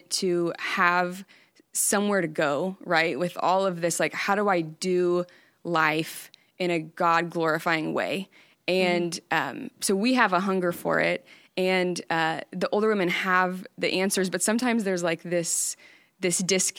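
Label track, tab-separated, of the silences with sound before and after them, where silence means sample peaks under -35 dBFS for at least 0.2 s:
1.220000	1.750000	silence
5.240000	5.650000	silence
6.340000	6.600000	silence
8.230000	8.680000	silence
11.160000	11.570000	silence
15.730000	16.220000	silence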